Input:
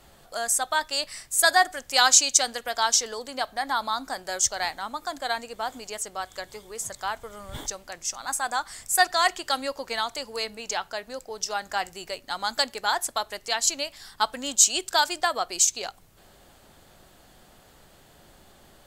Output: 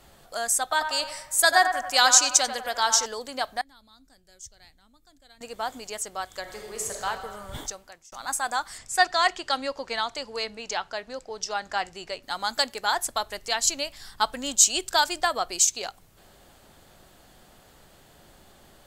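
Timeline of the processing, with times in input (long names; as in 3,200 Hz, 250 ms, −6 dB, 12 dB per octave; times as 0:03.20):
0:00.62–0:03.06: feedback echo with a band-pass in the loop 92 ms, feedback 59%, band-pass 980 Hz, level −6.5 dB
0:03.61–0:05.41: guitar amp tone stack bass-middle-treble 10-0-1
0:06.41–0:07.06: thrown reverb, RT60 1.7 s, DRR −0.5 dB
0:07.57–0:08.12: fade out
0:08.78–0:12.23: low-pass filter 6,300 Hz
0:12.94–0:15.56: low-shelf EQ 110 Hz +8.5 dB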